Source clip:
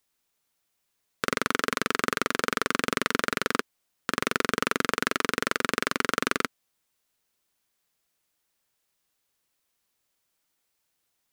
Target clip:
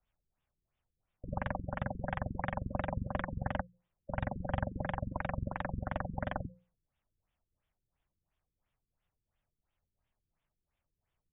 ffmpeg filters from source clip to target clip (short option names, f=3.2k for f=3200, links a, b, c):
-filter_complex "[0:a]aemphasis=mode=reproduction:type=bsi,bandreject=f=60:t=h:w=6,bandreject=f=120:t=h:w=6,bandreject=f=180:t=h:w=6,volume=20.5dB,asoftclip=hard,volume=-20.5dB,acrossover=split=190|2100[a][b][c];[b]aeval=exprs='val(0)*sin(2*PI*340*n/s)':c=same[d];[c]asoftclip=type=tanh:threshold=-40dB[e];[a][d][e]amix=inputs=3:normalize=0,afftfilt=real='re*lt(b*sr/1024,420*pow(3800/420,0.5+0.5*sin(2*PI*2.9*pts/sr)))':imag='im*lt(b*sr/1024,420*pow(3800/420,0.5+0.5*sin(2*PI*2.9*pts/sr)))':win_size=1024:overlap=0.75"